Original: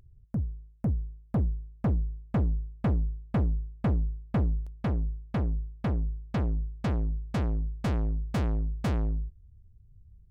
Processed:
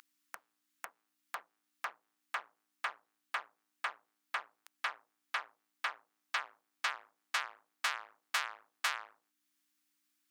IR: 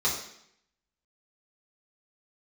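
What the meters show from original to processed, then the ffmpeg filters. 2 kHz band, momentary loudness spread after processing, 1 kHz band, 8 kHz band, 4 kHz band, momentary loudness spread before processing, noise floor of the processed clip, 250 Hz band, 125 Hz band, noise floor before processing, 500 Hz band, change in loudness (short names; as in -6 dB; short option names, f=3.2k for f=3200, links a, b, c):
+9.0 dB, 16 LU, +1.5 dB, n/a, +9.5 dB, 4 LU, -84 dBFS, under -40 dB, under -40 dB, -57 dBFS, -17.5 dB, -8.5 dB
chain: -af "acompressor=threshold=-46dB:ratio=1.5,aeval=exprs='val(0)+0.00501*(sin(2*PI*60*n/s)+sin(2*PI*2*60*n/s)/2+sin(2*PI*3*60*n/s)/3+sin(2*PI*4*60*n/s)/4+sin(2*PI*5*60*n/s)/5)':c=same,highpass=f=1.2k:w=0.5412,highpass=f=1.2k:w=1.3066,volume=16dB"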